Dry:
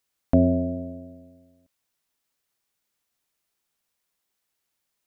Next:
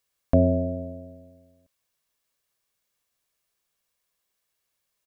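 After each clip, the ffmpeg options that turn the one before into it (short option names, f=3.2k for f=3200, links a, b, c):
-af "aecho=1:1:1.8:0.32"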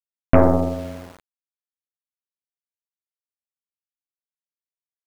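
-af "aeval=exprs='val(0)*gte(abs(val(0)),0.00944)':c=same,aeval=exprs='0.562*(cos(1*acos(clip(val(0)/0.562,-1,1)))-cos(1*PI/2))+0.126*(cos(6*acos(clip(val(0)/0.562,-1,1)))-cos(6*PI/2))':c=same,volume=4dB"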